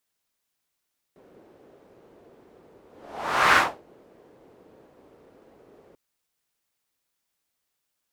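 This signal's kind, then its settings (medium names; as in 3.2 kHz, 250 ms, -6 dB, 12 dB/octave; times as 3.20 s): whoosh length 4.79 s, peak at 2.40 s, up 0.75 s, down 0.28 s, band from 420 Hz, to 1.4 kHz, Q 1.9, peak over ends 37 dB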